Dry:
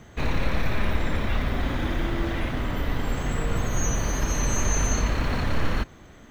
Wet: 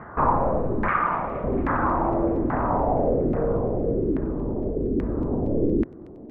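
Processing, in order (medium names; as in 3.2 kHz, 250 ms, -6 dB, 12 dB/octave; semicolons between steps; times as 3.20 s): rattle on loud lows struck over -24 dBFS, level -23 dBFS; bass shelf 91 Hz -10.5 dB; in parallel at -2.5 dB: peak limiter -26 dBFS, peak gain reduction 10.5 dB; on the sum: gain riding; low-pass sweep 1.1 kHz -> 370 Hz, 2.21–4.09 s; 0.88–1.44 s: ring modulator 1.2 kHz; LFO low-pass saw down 1.2 Hz 320–1900 Hz; on a send: feedback echo behind a high-pass 232 ms, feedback 76%, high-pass 4.2 kHz, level -6 dB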